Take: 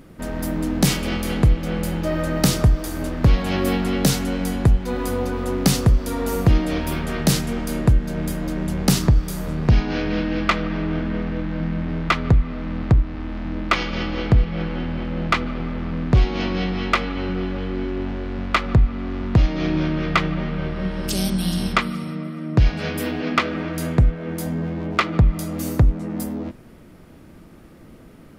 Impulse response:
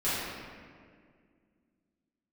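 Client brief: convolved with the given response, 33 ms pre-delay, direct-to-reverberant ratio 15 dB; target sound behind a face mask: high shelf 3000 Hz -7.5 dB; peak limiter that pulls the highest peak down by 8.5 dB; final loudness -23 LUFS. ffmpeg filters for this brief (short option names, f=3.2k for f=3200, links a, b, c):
-filter_complex "[0:a]alimiter=limit=-15.5dB:level=0:latency=1,asplit=2[a][b];[1:a]atrim=start_sample=2205,adelay=33[c];[b][c]afir=irnorm=-1:irlink=0,volume=-25.5dB[d];[a][d]amix=inputs=2:normalize=0,highshelf=f=3k:g=-7.5,volume=3dB"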